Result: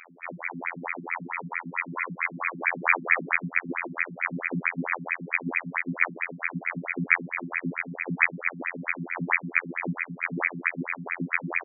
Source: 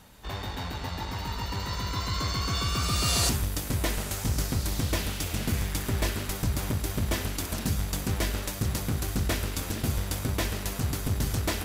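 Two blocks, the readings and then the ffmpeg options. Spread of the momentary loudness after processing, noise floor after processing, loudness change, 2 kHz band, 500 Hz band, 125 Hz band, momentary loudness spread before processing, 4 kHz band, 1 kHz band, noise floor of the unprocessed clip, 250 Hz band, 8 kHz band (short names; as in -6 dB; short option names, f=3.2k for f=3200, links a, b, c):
8 LU, -47 dBFS, +1.5 dB, +12.5 dB, -3.0 dB, -10.0 dB, 7 LU, under -40 dB, +2.5 dB, -36 dBFS, -1.0 dB, under -40 dB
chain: -filter_complex "[0:a]aecho=1:1:61|122|183|244:0.2|0.0758|0.0288|0.0109,acrossover=split=8000[a][b];[b]acompressor=threshold=-44dB:ratio=4:attack=1:release=60[c];[a][c]amix=inputs=2:normalize=0,equalizer=f=1.5k:t=o:w=0.56:g=7,afftfilt=real='hypot(re,im)*cos(PI*b)':imag='0':win_size=2048:overlap=0.75,aeval=exprs='max(val(0),0)':c=same,aexciter=amount=14.8:drive=7.8:freq=2.6k,acontrast=87,equalizer=f=78:t=o:w=0.26:g=-12.5,afftfilt=real='re*between(b*sr/1024,200*pow(1800/200,0.5+0.5*sin(2*PI*4.5*pts/sr))/1.41,200*pow(1800/200,0.5+0.5*sin(2*PI*4.5*pts/sr))*1.41)':imag='im*between(b*sr/1024,200*pow(1800/200,0.5+0.5*sin(2*PI*4.5*pts/sr))/1.41,200*pow(1800/200,0.5+0.5*sin(2*PI*4.5*pts/sr))*1.41)':win_size=1024:overlap=0.75,volume=6.5dB"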